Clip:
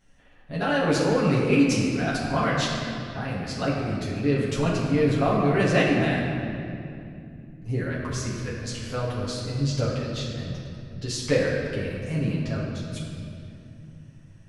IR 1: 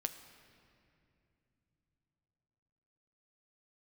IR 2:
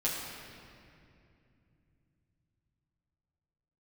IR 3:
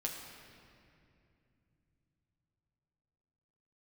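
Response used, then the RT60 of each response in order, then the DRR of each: 2; not exponential, 2.6 s, 2.6 s; 8.0, -7.5, -1.0 dB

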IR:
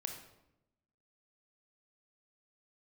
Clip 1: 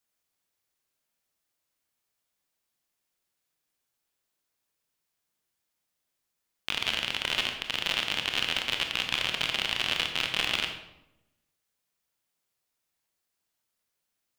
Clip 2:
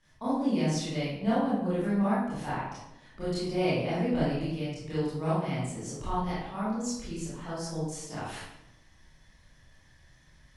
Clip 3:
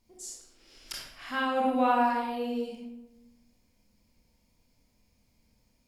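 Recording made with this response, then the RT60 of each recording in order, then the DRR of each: 1; 0.90, 0.90, 0.90 s; 4.0, -11.5, -3.0 dB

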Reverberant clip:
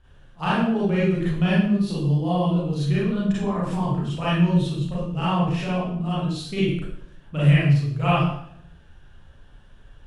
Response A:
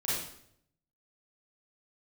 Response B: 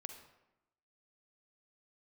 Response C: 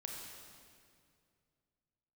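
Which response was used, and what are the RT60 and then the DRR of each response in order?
A; 0.70, 0.95, 2.3 s; -9.5, 6.0, -0.5 dB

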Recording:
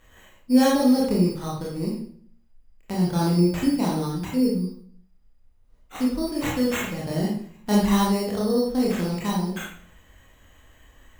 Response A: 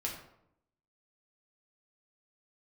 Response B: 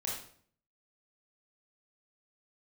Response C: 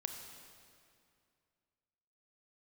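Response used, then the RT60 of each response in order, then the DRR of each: B; 0.75, 0.55, 2.4 s; -2.5, -4.5, 4.5 dB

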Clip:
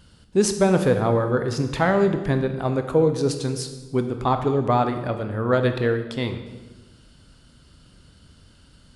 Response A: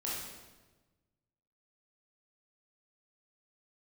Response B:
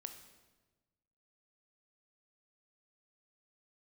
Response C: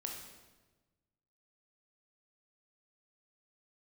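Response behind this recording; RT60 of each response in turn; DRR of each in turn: B; 1.2, 1.2, 1.2 s; -6.5, 6.5, 0.5 dB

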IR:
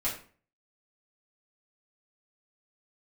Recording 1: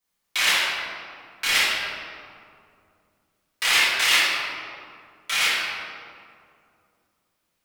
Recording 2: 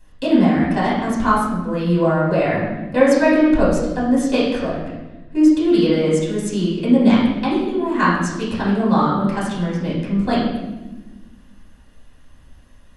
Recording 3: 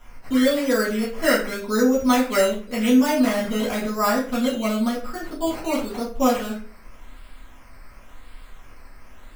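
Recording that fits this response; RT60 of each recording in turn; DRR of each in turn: 3; 2.4, 1.2, 0.45 s; -12.0, -7.5, -8.5 dB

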